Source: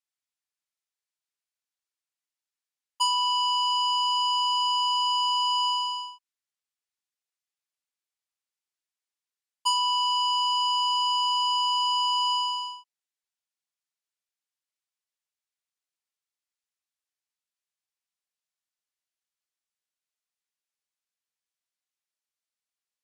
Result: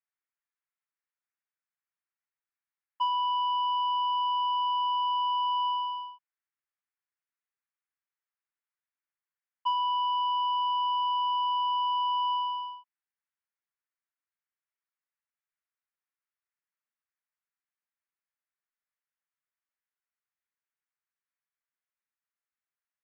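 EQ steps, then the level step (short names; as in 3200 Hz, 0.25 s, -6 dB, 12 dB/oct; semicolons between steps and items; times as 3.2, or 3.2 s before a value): HPF 1200 Hz 12 dB/oct; LPF 2000 Hz 24 dB/oct; +4.0 dB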